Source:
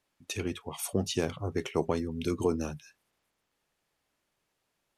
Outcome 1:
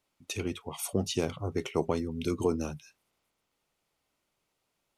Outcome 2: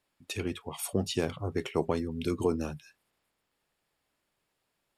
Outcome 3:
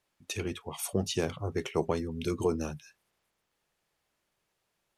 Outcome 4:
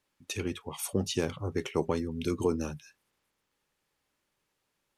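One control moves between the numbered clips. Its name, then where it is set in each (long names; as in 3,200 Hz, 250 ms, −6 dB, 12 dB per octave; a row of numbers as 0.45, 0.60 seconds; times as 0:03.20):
notch filter, centre frequency: 1,700, 6,100, 270, 680 Hertz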